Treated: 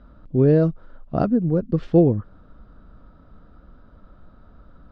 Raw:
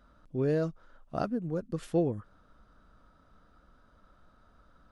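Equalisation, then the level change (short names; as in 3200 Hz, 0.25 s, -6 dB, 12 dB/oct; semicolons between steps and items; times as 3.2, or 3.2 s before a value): LPF 4700 Hz 24 dB/oct; tilt shelf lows +4 dB, about 820 Hz; low shelf 500 Hz +4.5 dB; +6.5 dB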